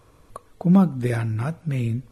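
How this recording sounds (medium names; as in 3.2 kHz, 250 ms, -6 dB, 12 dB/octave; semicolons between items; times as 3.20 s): noise floor -55 dBFS; spectral tilt -8.0 dB/octave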